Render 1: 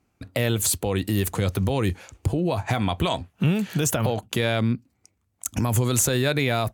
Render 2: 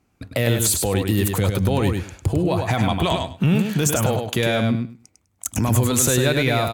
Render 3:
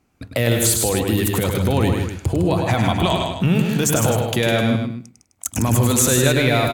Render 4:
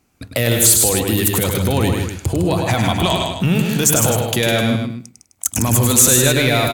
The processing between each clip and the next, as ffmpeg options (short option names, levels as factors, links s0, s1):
-filter_complex "[0:a]acontrast=69,asplit=2[s0][s1];[s1]aecho=0:1:101|202|303:0.562|0.0956|0.0163[s2];[s0][s2]amix=inputs=2:normalize=0,volume=0.668"
-af "bandreject=f=50:t=h:w=6,bandreject=f=100:t=h:w=6,bandreject=f=150:t=h:w=6,bandreject=f=200:t=h:w=6,aecho=1:1:156:0.473,volume=1.19"
-filter_complex "[0:a]highshelf=f=3700:g=8,asplit=2[s0][s1];[s1]acontrast=24,volume=1.26[s2];[s0][s2]amix=inputs=2:normalize=0,volume=0.355"